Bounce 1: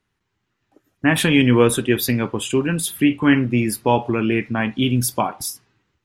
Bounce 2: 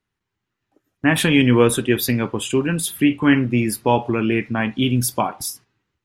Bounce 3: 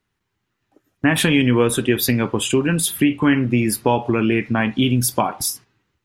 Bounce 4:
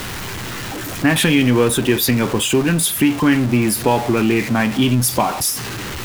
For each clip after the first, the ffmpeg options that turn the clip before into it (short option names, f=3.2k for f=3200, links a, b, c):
-af "agate=range=-6dB:threshold=-42dB:ratio=16:detection=peak"
-af "acompressor=threshold=-20dB:ratio=2.5,volume=5dB"
-af "aeval=exprs='val(0)+0.5*0.0891*sgn(val(0))':c=same"